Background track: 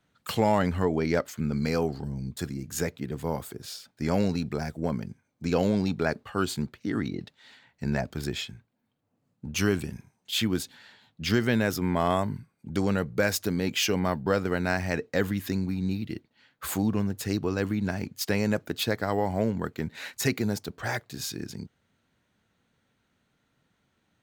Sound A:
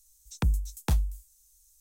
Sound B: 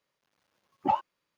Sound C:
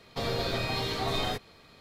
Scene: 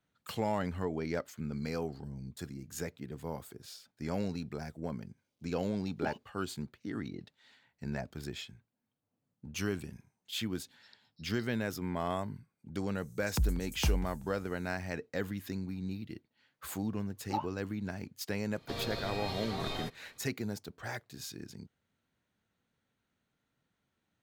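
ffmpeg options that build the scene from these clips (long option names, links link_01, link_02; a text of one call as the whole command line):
ffmpeg -i bed.wav -i cue0.wav -i cue1.wav -i cue2.wav -filter_complex "[2:a]asplit=2[link_01][link_02];[1:a]asplit=2[link_03][link_04];[0:a]volume=-9.5dB[link_05];[link_01]asuperstop=centerf=1300:order=4:qfactor=0.62[link_06];[link_03]asuperpass=centerf=4500:order=20:qfactor=2.7[link_07];[link_04]asplit=2[link_08][link_09];[link_09]adelay=190,lowpass=frequency=4200:poles=1,volume=-18.5dB,asplit=2[link_10][link_11];[link_11]adelay=190,lowpass=frequency=4200:poles=1,volume=0.42,asplit=2[link_12][link_13];[link_13]adelay=190,lowpass=frequency=4200:poles=1,volume=0.42[link_14];[link_08][link_10][link_12][link_14]amix=inputs=4:normalize=0[link_15];[link_06]atrim=end=1.37,asetpts=PTS-STARTPTS,volume=-4dB,afade=type=in:duration=0.004:curve=hsin,afade=type=out:start_time=1.366:duration=0.004:curve=hsin,adelay=227997S[link_16];[link_07]atrim=end=1.8,asetpts=PTS-STARTPTS,volume=-10.5dB,afade=type=in:duration=0.004:curve=hsin,afade=type=out:start_time=1.796:duration=0.004:curve=hsin,adelay=10510[link_17];[link_15]atrim=end=1.8,asetpts=PTS-STARTPTS,volume=-4.5dB,afade=type=in:duration=0.004:curve=hsin,afade=type=out:start_time=1.796:duration=0.004:curve=hsin,adelay=12950[link_18];[link_02]atrim=end=1.37,asetpts=PTS-STARTPTS,volume=-9.5dB,afade=type=in:duration=0.004:curve=hsin,afade=type=out:start_time=1.366:duration=0.004:curve=hsin,adelay=16450[link_19];[3:a]atrim=end=1.8,asetpts=PTS-STARTPTS,volume=-8dB,afade=type=in:duration=0.004:curve=hsin,afade=type=out:start_time=1.796:duration=0.004:curve=hsin,adelay=18520[link_20];[link_05][link_16][link_17][link_18][link_19][link_20]amix=inputs=6:normalize=0" out.wav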